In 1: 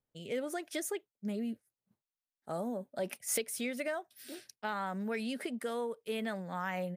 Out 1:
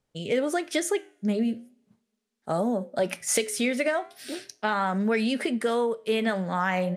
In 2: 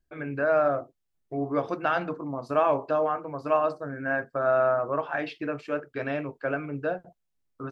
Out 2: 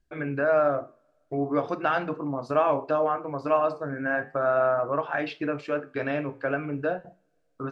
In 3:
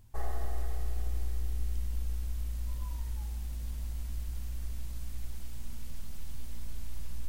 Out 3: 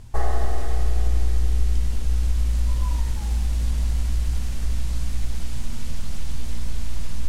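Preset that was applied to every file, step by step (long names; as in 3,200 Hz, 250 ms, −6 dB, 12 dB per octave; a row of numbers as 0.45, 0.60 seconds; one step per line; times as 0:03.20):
low-pass filter 8,700 Hz 12 dB per octave
in parallel at −2 dB: downward compressor, threshold −33 dBFS
on the sum: flanger 0.39 Hz, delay 4.9 ms, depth 7.7 ms, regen −84%
coupled-rooms reverb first 0.4 s, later 2.2 s, from −26 dB, DRR 19 dB
loudness normalisation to −27 LKFS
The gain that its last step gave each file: +11.0, +3.5, +15.0 decibels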